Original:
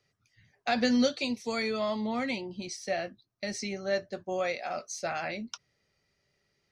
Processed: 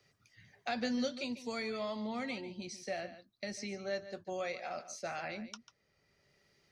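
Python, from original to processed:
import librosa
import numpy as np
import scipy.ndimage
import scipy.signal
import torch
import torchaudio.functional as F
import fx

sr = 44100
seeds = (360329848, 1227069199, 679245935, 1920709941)

y = x + 10.0 ** (-14.5 / 20.0) * np.pad(x, (int(144 * sr / 1000.0), 0))[:len(x)]
y = fx.band_squash(y, sr, depth_pct=40)
y = y * librosa.db_to_amplitude(-7.5)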